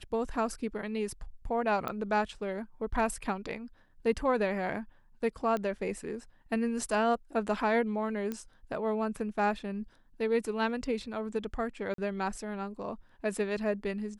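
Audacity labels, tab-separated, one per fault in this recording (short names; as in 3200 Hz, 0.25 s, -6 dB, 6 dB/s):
1.880000	1.880000	pop -21 dBFS
5.570000	5.570000	pop -22 dBFS
8.320000	8.320000	pop -22 dBFS
11.940000	11.980000	gap 43 ms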